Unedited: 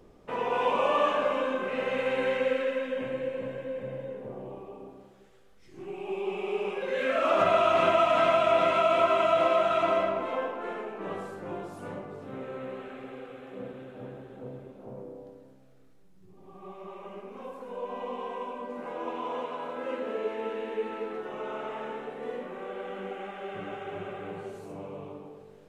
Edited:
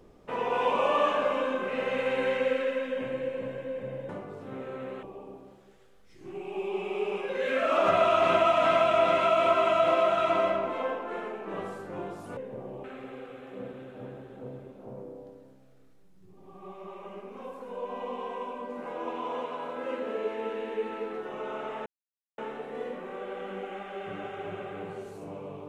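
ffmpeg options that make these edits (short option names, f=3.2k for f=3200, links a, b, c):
-filter_complex "[0:a]asplit=6[a][b][c][d][e][f];[a]atrim=end=4.092[g];[b]atrim=start=11.898:end=12.842[h];[c]atrim=start=4.558:end=11.902[i];[d]atrim=start=4.088:end=4.562[j];[e]atrim=start=12.838:end=21.86,asetpts=PTS-STARTPTS,afade=t=out:st=9.018:d=0.004:c=hsin,apad=pad_dur=0.52[k];[f]atrim=start=21.86,asetpts=PTS-STARTPTS,afade=t=in:d=0.004:c=hsin[l];[g][h]acrossfade=d=0.004:c1=hsin:c2=hsin[m];[m][i]acrossfade=d=0.004:c1=hsin:c2=hsin[n];[n][j]acrossfade=d=0.004:c1=hsin:c2=hsin[o];[k][l]concat=n=2:v=0:a=1[p];[o][p]acrossfade=d=0.004:c1=hsin:c2=hsin"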